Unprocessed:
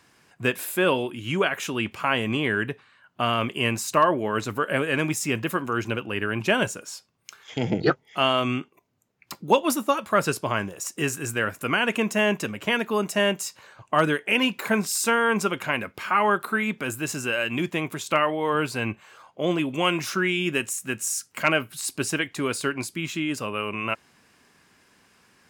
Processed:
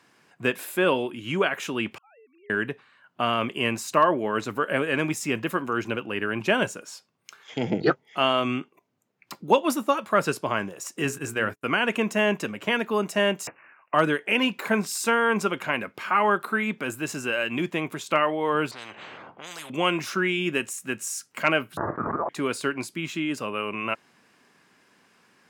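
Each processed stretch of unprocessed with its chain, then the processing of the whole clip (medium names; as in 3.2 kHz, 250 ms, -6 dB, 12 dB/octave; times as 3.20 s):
1.98–2.50 s: formants replaced by sine waves + band-pass filter 440 Hz, Q 3.8 + differentiator
11.04–11.64 s: hum notches 60/120/180/240/300/360/420 Hz + gate -37 dBFS, range -40 dB + bass shelf 110 Hz +9 dB
13.47–13.94 s: high-pass 1.4 kHz + careless resampling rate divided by 8×, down none, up filtered
18.71–19.70 s: level-controlled noise filter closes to 770 Hz, open at -20 dBFS + compression 1.5:1, threshold -45 dBFS + spectrum-flattening compressor 10:1
21.77–22.29 s: high-pass 1.4 kHz 24 dB/octave + frequency inversion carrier 2.8 kHz + level flattener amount 100%
whole clip: high-pass 150 Hz; treble shelf 4.7 kHz -6 dB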